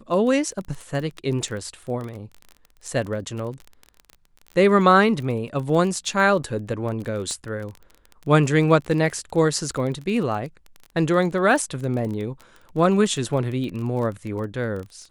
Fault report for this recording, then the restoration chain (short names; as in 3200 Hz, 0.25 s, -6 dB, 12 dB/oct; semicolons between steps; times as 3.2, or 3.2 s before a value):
crackle 22/s -29 dBFS
7.31 pop -19 dBFS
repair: de-click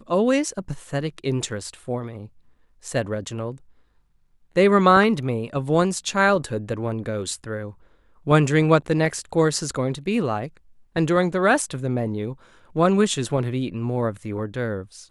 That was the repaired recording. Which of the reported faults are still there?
none